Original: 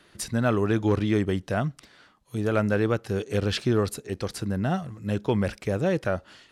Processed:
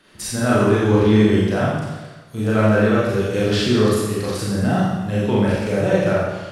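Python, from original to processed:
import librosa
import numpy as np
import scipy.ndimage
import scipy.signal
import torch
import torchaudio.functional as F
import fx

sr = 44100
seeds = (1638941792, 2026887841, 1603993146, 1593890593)

y = fx.rev_schroeder(x, sr, rt60_s=1.2, comb_ms=29, drr_db=-7.5)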